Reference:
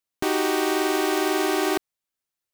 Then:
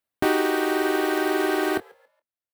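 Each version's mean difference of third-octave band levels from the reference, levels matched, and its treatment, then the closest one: 4.0 dB: fifteen-band graphic EQ 100 Hz +8 dB, 250 Hz +5 dB, 630 Hz +7 dB, 1.6 kHz +5 dB, 6.3 kHz -7 dB; on a send: frequency-shifting echo 140 ms, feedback 35%, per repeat +79 Hz, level -20 dB; on the sum: reverb removal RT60 1.1 s; doubling 25 ms -12 dB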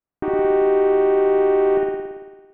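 16.0 dB: bass shelf 250 Hz +4.5 dB; in parallel at -3 dB: saturation -22.5 dBFS, distortion -11 dB; on the sum: Gaussian low-pass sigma 4.9 samples; spring tank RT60 1.3 s, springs 56 ms, chirp 40 ms, DRR -1.5 dB; trim -3 dB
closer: first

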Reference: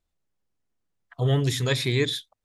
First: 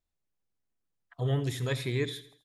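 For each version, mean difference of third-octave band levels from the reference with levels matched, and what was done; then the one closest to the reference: 2.0 dB: dynamic bell 5 kHz, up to -7 dB, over -44 dBFS, Q 0.91; feedback delay 82 ms, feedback 44%, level -16 dB; trim -6.5 dB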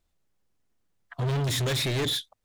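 6.0 dB: in parallel at -2.5 dB: peak limiter -18.5 dBFS, peak gain reduction 7.5 dB; on the sum: overload inside the chain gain 25 dB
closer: first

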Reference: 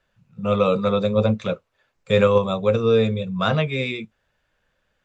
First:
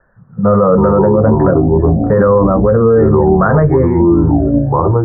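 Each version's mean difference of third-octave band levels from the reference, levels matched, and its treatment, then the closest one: 8.5 dB: steep low-pass 1.8 kHz 96 dB/octave; ever faster or slower copies 172 ms, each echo -5 st, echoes 3, each echo -6 dB; loudness maximiser +16.5 dB; trim -1 dB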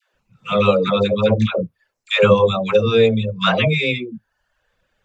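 5.5 dB: reverb removal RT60 0.66 s; dynamic bell 2.9 kHz, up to +6 dB, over -42 dBFS, Q 1.4; phase dispersion lows, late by 141 ms, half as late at 550 Hz; trim +4.5 dB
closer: second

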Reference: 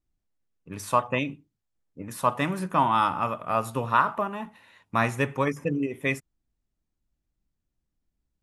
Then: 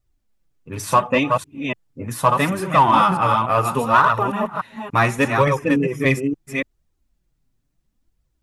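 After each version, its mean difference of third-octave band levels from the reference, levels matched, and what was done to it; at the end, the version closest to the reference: 4.5 dB: chunks repeated in reverse 288 ms, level -5 dB; peaking EQ 120 Hz +3.5 dB 0.69 oct; flange 0.73 Hz, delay 1.4 ms, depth 7 ms, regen +1%; in parallel at -7 dB: hard clipper -23 dBFS, distortion -11 dB; on the sum: trim +7.5 dB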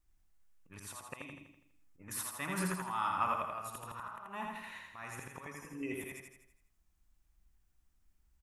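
9.5 dB: ten-band graphic EQ 125 Hz -9 dB, 250 Hz -8 dB, 500 Hz -9 dB, 4 kHz -5 dB; compression 8:1, threshold -37 dBFS, peak gain reduction 19 dB; slow attack 362 ms; feedback delay 82 ms, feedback 50%, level -3 dB; trim +7 dB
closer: first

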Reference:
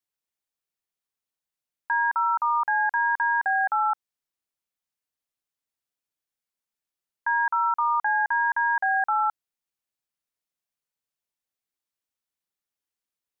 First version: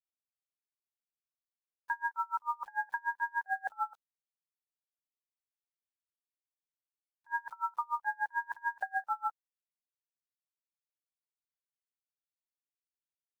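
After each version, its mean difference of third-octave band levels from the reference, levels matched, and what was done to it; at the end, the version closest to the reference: 4.5 dB: coarse spectral quantiser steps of 15 dB; peaking EQ 520 Hz +7.5 dB 0.4 oct; bit crusher 9-bit; logarithmic tremolo 6.8 Hz, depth 32 dB; trim -6 dB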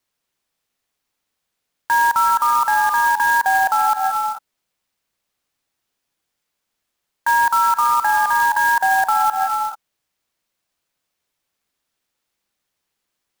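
17.5 dB: gated-style reverb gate 460 ms rising, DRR 7 dB; dynamic bell 1.7 kHz, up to -5 dB, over -39 dBFS, Q 2.7; loudness maximiser +20.5 dB; sampling jitter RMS 0.023 ms; trim -8 dB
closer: first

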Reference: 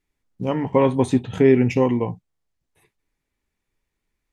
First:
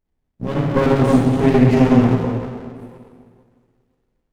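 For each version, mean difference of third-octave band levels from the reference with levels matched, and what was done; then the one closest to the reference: 8.5 dB: plate-style reverb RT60 2.1 s, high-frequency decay 0.75×, DRR -8.5 dB; sliding maximum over 33 samples; trim -3.5 dB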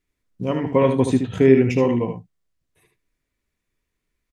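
2.5 dB: band-stop 840 Hz, Q 5.2; on a send: delay 75 ms -7 dB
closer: second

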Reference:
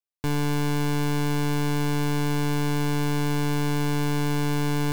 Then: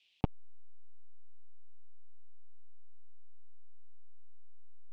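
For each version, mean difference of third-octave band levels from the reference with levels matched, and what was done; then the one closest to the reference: 32.0 dB: resonant high shelf 1.9 kHz +11.5 dB, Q 3; peak limiter -11 dBFS, peak gain reduction 3 dB; LFO low-pass square 2.4 Hz 760–3300 Hz; transformer saturation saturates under 790 Hz; trim +10 dB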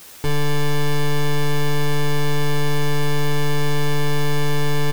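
2.5 dB: treble shelf 7.8 kHz -7 dB; comb 2.3 ms, depth 52%; in parallel at -7 dB: word length cut 6-bit, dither triangular; on the sum: early reflections 12 ms -3.5 dB, 40 ms -16.5 dB, 65 ms -14.5 dB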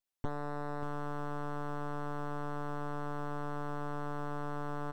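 8.0 dB: comb filter that takes the minimum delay 8 ms; saturation -31 dBFS, distortion -4 dB; echo from a far wall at 100 m, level -14 dB; slew-rate limiter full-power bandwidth 18 Hz; trim +3 dB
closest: second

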